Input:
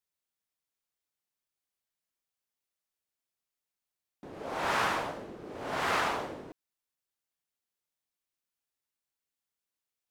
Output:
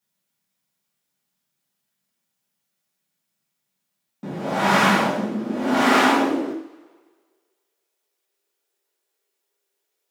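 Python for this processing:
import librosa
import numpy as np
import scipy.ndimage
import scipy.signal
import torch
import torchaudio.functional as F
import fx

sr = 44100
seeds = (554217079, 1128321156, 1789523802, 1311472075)

y = fx.rev_double_slope(x, sr, seeds[0], early_s=0.41, late_s=1.6, knee_db=-22, drr_db=-5.0)
y = fx.filter_sweep_highpass(y, sr, from_hz=170.0, to_hz=410.0, start_s=4.48, end_s=7.78, q=7.0)
y = y * librosa.db_to_amplitude(5.0)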